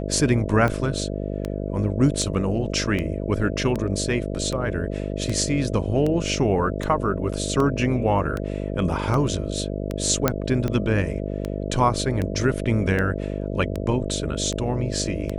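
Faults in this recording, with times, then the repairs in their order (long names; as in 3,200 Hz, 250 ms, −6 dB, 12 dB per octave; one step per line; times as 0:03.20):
mains buzz 50 Hz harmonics 13 −28 dBFS
scratch tick 78 rpm −14 dBFS
0:10.28: click −4 dBFS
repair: click removal
hum removal 50 Hz, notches 13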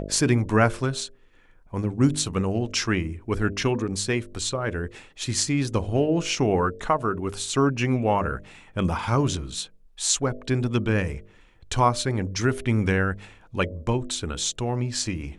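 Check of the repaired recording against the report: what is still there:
0:10.28: click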